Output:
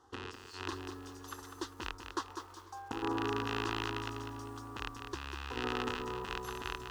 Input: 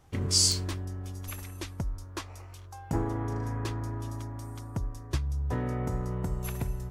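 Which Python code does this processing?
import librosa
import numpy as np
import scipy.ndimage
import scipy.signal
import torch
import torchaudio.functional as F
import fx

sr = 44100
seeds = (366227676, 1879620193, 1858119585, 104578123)

y = fx.rattle_buzz(x, sr, strikes_db=-29.0, level_db=-15.0)
y = fx.highpass(y, sr, hz=470.0, slope=6)
y = fx.peak_eq(y, sr, hz=13000.0, db=10.0, octaves=0.74)
y = fx.over_compress(y, sr, threshold_db=-33.0, ratio=-0.5)
y = fx.air_absorb(y, sr, metres=140.0)
y = fx.fixed_phaser(y, sr, hz=620.0, stages=6)
y = y + 10.0 ** (-23.5 / 20.0) * np.pad(y, (int(492 * sr / 1000.0), 0))[:len(y)]
y = fx.echo_crushed(y, sr, ms=199, feedback_pct=35, bits=10, wet_db=-7.0)
y = y * librosa.db_to_amplitude(3.0)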